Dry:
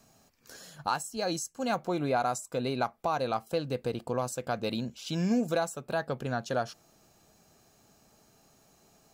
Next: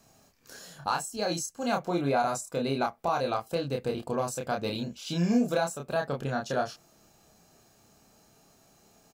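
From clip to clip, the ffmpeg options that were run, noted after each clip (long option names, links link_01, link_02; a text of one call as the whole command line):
ffmpeg -i in.wav -filter_complex "[0:a]asplit=2[link_01][link_02];[link_02]adelay=29,volume=-3dB[link_03];[link_01][link_03]amix=inputs=2:normalize=0" out.wav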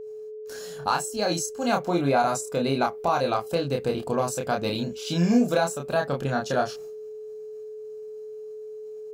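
ffmpeg -i in.wav -af "agate=range=-33dB:threshold=-51dB:ratio=3:detection=peak,aeval=exprs='val(0)+0.01*sin(2*PI*430*n/s)':channel_layout=same,volume=4.5dB" out.wav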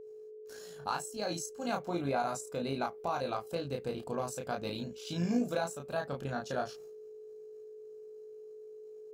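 ffmpeg -i in.wav -af "tremolo=f=55:d=0.333,volume=-9dB" out.wav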